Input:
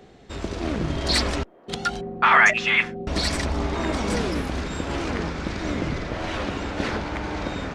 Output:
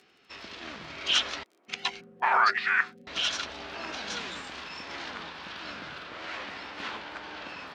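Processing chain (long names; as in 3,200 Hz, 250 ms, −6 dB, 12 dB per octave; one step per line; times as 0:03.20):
surface crackle 19 per second −43 dBFS
formants moved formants −6 semitones
resonant band-pass 4,400 Hz, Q 0.52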